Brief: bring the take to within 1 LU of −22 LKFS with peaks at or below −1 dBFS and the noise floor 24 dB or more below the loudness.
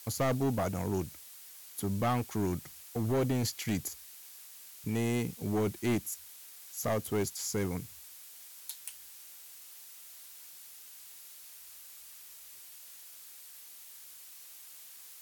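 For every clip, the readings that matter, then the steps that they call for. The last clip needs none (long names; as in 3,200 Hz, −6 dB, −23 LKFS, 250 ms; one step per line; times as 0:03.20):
share of clipped samples 1.4%; peaks flattened at −25.0 dBFS; background noise floor −51 dBFS; target noise floor −58 dBFS; integrated loudness −34.0 LKFS; sample peak −25.0 dBFS; target loudness −22.0 LKFS
→ clipped peaks rebuilt −25 dBFS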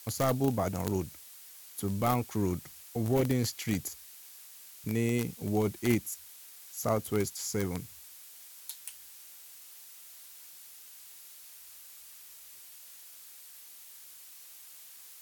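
share of clipped samples 0.0%; background noise floor −51 dBFS; target noise floor −57 dBFS
→ noise reduction from a noise print 6 dB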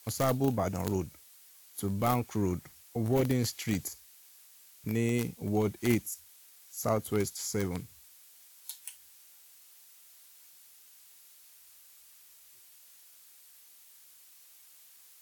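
background noise floor −57 dBFS; integrated loudness −32.5 LKFS; sample peak −16.0 dBFS; target loudness −22.0 LKFS
→ level +10.5 dB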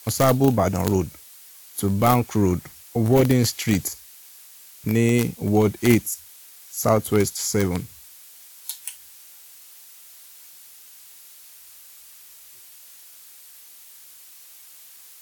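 integrated loudness −22.0 LKFS; sample peak −5.5 dBFS; background noise floor −47 dBFS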